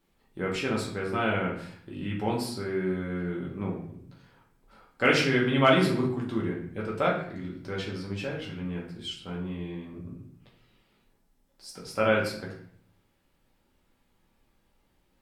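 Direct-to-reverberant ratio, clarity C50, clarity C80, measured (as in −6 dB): −4.0 dB, 5.5 dB, 9.0 dB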